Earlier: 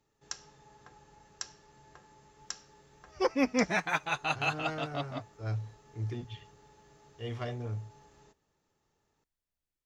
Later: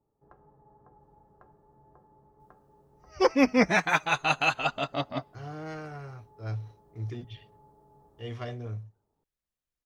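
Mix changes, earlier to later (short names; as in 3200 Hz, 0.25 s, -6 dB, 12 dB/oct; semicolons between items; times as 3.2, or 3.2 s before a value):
speech: entry +1.00 s; first sound: add LPF 1000 Hz 24 dB/oct; second sound +6.0 dB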